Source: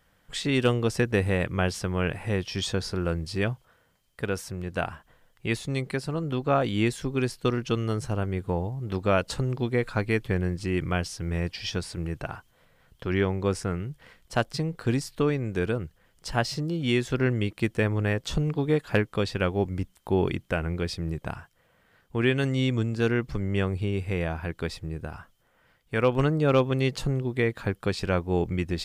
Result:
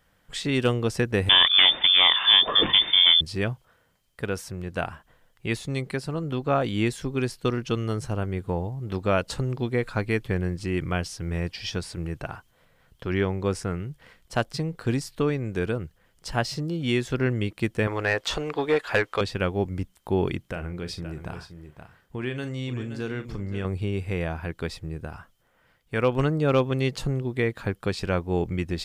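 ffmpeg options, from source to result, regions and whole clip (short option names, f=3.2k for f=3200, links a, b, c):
-filter_complex "[0:a]asettb=1/sr,asplit=3[a][b][c];[a]atrim=end=1.294[d];[b]atrim=start=1.29:end=3.21,asetpts=PTS-STARTPTS,afade=t=in:d=0.004:c=qsin,afade=t=out:st=1.916:d=0.004:c=qsin,aemphasis=mode=production:type=50fm,aeval=exprs='0.266*sin(PI/2*2.82*val(0)/0.266)':c=same,lowpass=f=3.1k:t=q:w=0.5098,lowpass=f=3.1k:t=q:w=0.6013,lowpass=f=3.1k:t=q:w=0.9,lowpass=f=3.1k:t=q:w=2.563,afreqshift=-3600[e];[c]atrim=start=3.206[f];[d][e]acrossfade=d=0.004:c1=hsin:c2=qsin[g];[g][f]acrossfade=d=0.004:c1=qsin:c2=hsin,asettb=1/sr,asplit=3[h][i][j];[h]atrim=end=17.874[k];[i]atrim=start=17.87:end=19.21,asetpts=PTS-STARTPTS,afade=t=in:d=0.004:c=qsin,afade=t=out:st=1.336:d=0.004:c=qsin,equalizer=f=170:t=o:w=1.3:g=-13,asplit=2[l][m];[m]highpass=f=720:p=1,volume=17dB,asoftclip=type=tanh:threshold=-9.5dB[n];[l][n]amix=inputs=2:normalize=0,lowpass=f=2.9k:p=1,volume=-6dB[o];[j]atrim=start=19.206[p];[k][o]acrossfade=d=0.004:c1=hsin:c2=qsin[q];[q][p]acrossfade=d=0.004:c1=qsin:c2=hsin,asettb=1/sr,asplit=3[r][s][t];[r]atrim=end=20.414[u];[s]atrim=start=20.41:end=23.65,asetpts=PTS-STARTPTS,afade=t=in:d=0.004:c=qsin,afade=t=out:st=3.236:d=0.004:c=qsin,aecho=1:1:521:0.224,atrim=end_sample=142884,acompressor=threshold=-31dB:ratio=2:attack=3.2:release=140:knee=1:detection=peak,asplit=2[v][w];[w]adelay=40,volume=-11dB[x];[v][x]amix=inputs=2:normalize=0,atrim=end_sample=142884[y];[t]atrim=start=23.646[z];[u][y]acrossfade=d=0.004:c1=hsin:c2=qsin[aa];[aa][z]acrossfade=d=0.004:c1=qsin:c2=hsin"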